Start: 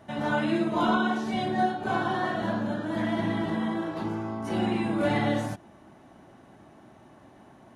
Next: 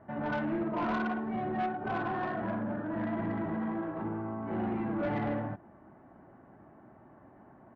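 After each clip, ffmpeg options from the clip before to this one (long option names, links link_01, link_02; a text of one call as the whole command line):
ffmpeg -i in.wav -af "lowpass=frequency=1800:width=0.5412,lowpass=frequency=1800:width=1.3066,aresample=16000,asoftclip=type=tanh:threshold=-24dB,aresample=44100,volume=-3dB" out.wav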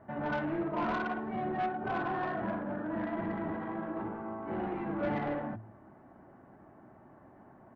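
ffmpeg -i in.wav -af "bandreject=frequency=55.21:width_type=h:width=4,bandreject=frequency=110.42:width_type=h:width=4,bandreject=frequency=165.63:width_type=h:width=4,bandreject=frequency=220.84:width_type=h:width=4,bandreject=frequency=276.05:width_type=h:width=4,bandreject=frequency=331.26:width_type=h:width=4" out.wav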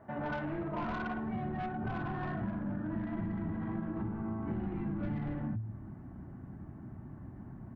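ffmpeg -i in.wav -af "asubboost=boost=11:cutoff=170,acompressor=threshold=-33dB:ratio=6" out.wav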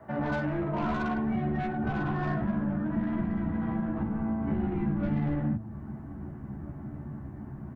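ffmpeg -i in.wav -filter_complex "[0:a]asplit=2[link_01][link_02];[link_02]adelay=14,volume=-3dB[link_03];[link_01][link_03]amix=inputs=2:normalize=0,asplit=2[link_04][link_05];[link_05]adelay=1633,volume=-18dB,highshelf=frequency=4000:gain=-36.7[link_06];[link_04][link_06]amix=inputs=2:normalize=0,acrossover=split=210|450|940[link_07][link_08][link_09][link_10];[link_10]asoftclip=type=tanh:threshold=-37dB[link_11];[link_07][link_08][link_09][link_11]amix=inputs=4:normalize=0,volume=4.5dB" out.wav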